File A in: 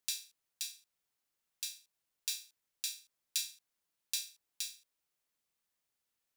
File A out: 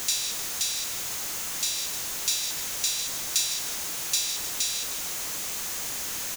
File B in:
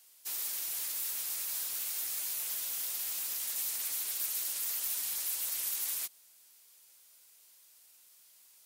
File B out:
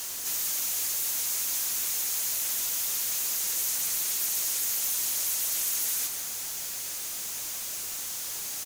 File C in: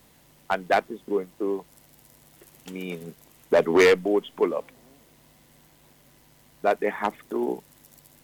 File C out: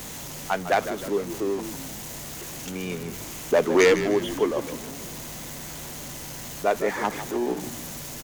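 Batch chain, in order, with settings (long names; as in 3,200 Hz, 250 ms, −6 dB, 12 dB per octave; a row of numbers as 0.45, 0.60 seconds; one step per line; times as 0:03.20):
converter with a step at zero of −31.5 dBFS
parametric band 6,500 Hz +7 dB 0.38 octaves
on a send: echo with shifted repeats 153 ms, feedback 50%, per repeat −63 Hz, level −11 dB
on the sum: loudness normalisation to −27 LKFS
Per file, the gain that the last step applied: +4.5, +0.5, −1.5 decibels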